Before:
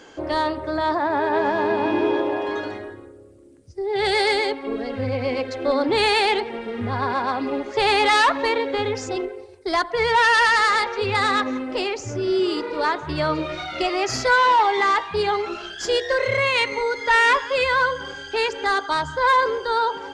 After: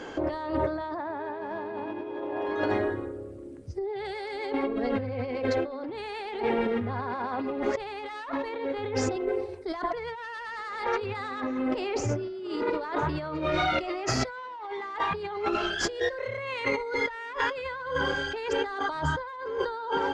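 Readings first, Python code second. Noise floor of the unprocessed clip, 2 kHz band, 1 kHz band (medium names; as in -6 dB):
-43 dBFS, -12.0 dB, -11.5 dB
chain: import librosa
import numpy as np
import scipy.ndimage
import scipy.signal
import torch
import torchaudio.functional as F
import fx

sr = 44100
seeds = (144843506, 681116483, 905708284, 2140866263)

y = fx.high_shelf(x, sr, hz=3300.0, db=-12.0)
y = fx.over_compress(y, sr, threshold_db=-32.0, ratio=-1.0)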